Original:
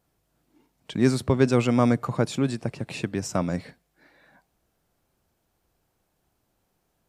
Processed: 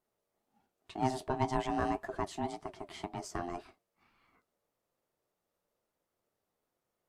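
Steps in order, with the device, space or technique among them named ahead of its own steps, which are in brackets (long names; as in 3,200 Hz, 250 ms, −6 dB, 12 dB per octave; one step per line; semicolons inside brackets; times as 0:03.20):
alien voice (ring modulation 520 Hz; flanger 1.9 Hz, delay 7.5 ms, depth 5.6 ms, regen −48%)
level −5.5 dB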